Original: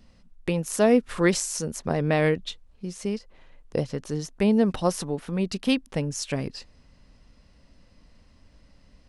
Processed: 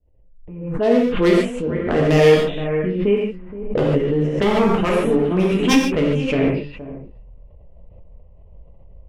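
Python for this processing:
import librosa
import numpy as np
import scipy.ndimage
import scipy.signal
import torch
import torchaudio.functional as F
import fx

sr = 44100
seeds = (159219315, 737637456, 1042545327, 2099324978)

p1 = fx.fade_in_head(x, sr, length_s=2.21)
p2 = fx.env_phaser(p1, sr, low_hz=220.0, high_hz=4600.0, full_db=-25.5)
p3 = fx.high_shelf_res(p2, sr, hz=4000.0, db=-11.5, q=3.0)
p4 = p3 + fx.echo_single(p3, sr, ms=472, db=-13.5, dry=0)
p5 = 10.0 ** (-18.0 / 20.0) * (np.abs((p4 / 10.0 ** (-18.0 / 20.0) + 3.0) % 4.0 - 2.0) - 1.0)
p6 = fx.dynamic_eq(p5, sr, hz=360.0, q=1.5, threshold_db=-38.0, ratio=4.0, max_db=5)
p7 = fx.env_lowpass(p6, sr, base_hz=540.0, full_db=-20.5)
p8 = fx.rider(p7, sr, range_db=4, speed_s=0.5)
p9 = p7 + (p8 * librosa.db_to_amplitude(-2.5))
p10 = fx.rev_gated(p9, sr, seeds[0], gate_ms=170, shape='flat', drr_db=-4.0)
p11 = fx.pre_swell(p10, sr, db_per_s=57.0)
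y = p11 * librosa.db_to_amplitude(-1.5)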